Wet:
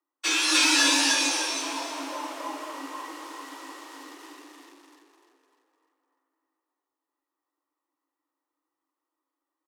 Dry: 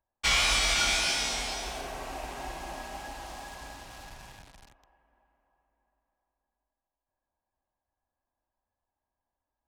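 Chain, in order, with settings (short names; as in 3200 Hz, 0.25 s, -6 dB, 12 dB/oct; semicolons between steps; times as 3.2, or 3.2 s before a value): frequency-shifting echo 0.3 s, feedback 42%, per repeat -54 Hz, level -3 dB; frequency shift +270 Hz; spectral noise reduction 7 dB; gain +5.5 dB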